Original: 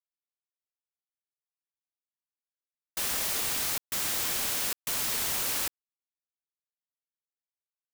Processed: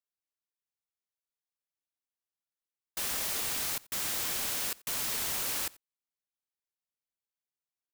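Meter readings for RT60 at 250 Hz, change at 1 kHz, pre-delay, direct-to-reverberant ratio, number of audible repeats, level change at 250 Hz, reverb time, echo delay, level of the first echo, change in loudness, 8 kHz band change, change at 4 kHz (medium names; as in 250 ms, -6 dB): no reverb, -3.0 dB, no reverb, no reverb, 1, -3.0 dB, no reverb, 88 ms, -23.5 dB, -3.0 dB, -3.0 dB, -3.0 dB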